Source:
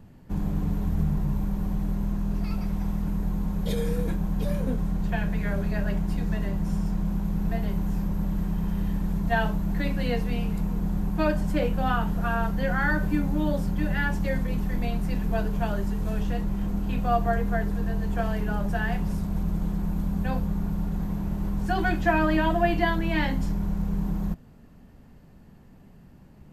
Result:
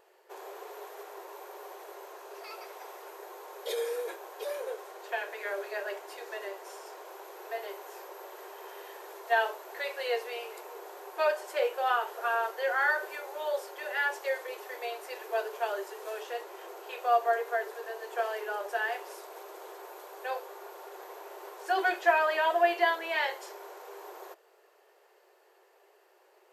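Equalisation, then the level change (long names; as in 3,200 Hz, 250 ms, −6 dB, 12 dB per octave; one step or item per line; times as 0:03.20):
linear-phase brick-wall high-pass 350 Hz
0.0 dB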